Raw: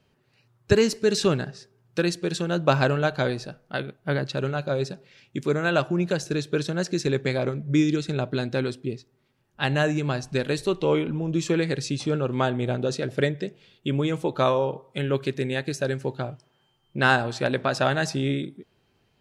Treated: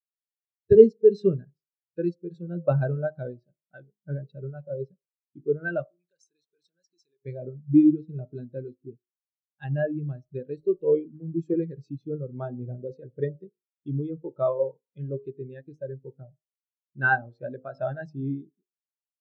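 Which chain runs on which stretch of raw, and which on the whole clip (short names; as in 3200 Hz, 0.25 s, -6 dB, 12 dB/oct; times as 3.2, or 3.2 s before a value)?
5.86–7.26 compressor 4:1, threshold -34 dBFS + tilt +4 dB/oct
11.06–11.54 companded quantiser 4-bit + three-band expander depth 40%
whole clip: de-hum 51.83 Hz, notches 26; spectral expander 2.5:1; gain +3 dB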